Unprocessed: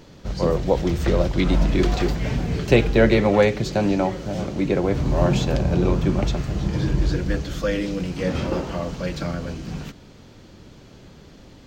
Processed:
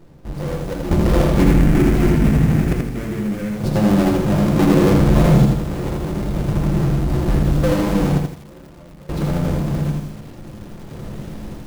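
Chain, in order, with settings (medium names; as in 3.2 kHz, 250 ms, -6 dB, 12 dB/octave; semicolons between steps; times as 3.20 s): square wave that keeps the level; simulated room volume 270 m³, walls furnished, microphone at 0.81 m; level rider gain up to 8.5 dB; tilt shelf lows +5 dB; peak limiter -8 dBFS, peak gain reduction 11 dB; hum notches 60/120/180/240 Hz; random-step tremolo 1.1 Hz, depth 95%; 1.42–3.52 s: graphic EQ 250/500/1000/2000/4000 Hz +5/-5/-5/+6/-6 dB; bit-crushed delay 81 ms, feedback 35%, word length 7-bit, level -3.5 dB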